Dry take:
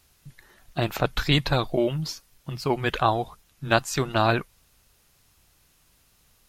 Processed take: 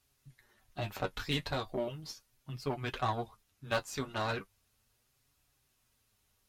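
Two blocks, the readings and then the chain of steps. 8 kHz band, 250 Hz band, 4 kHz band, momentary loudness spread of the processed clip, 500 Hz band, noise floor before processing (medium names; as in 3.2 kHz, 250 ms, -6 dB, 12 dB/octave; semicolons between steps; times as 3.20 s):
-11.5 dB, -13.0 dB, -11.5 dB, 13 LU, -11.5 dB, -63 dBFS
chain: flange 0.37 Hz, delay 6.8 ms, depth 4.9 ms, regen +38%; Chebyshev shaper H 3 -23 dB, 8 -25 dB, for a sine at -9 dBFS; comb of notches 170 Hz; trim -5 dB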